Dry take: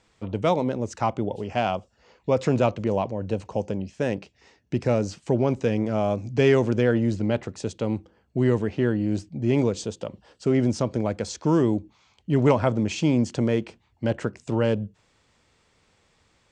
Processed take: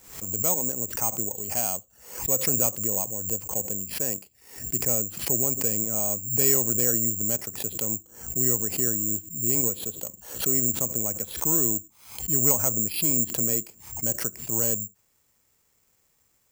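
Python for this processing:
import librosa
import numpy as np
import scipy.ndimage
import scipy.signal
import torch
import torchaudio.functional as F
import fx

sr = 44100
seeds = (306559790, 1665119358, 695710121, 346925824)

y = (np.kron(scipy.signal.resample_poly(x, 1, 6), np.eye(6)[0]) * 6)[:len(x)]
y = fx.pre_swell(y, sr, db_per_s=100.0)
y = y * 10.0 ** (-10.5 / 20.0)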